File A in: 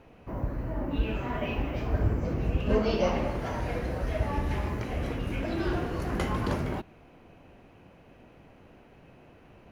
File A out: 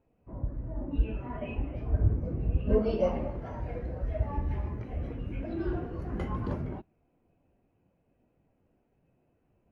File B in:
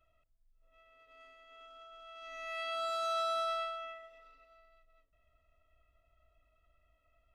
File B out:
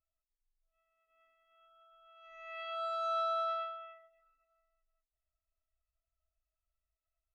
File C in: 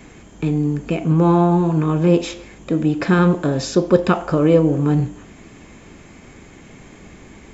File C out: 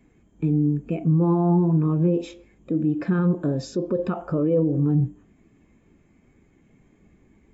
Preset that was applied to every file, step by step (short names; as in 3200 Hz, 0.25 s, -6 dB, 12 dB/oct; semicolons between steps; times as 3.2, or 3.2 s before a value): limiter -12 dBFS; spectral expander 1.5:1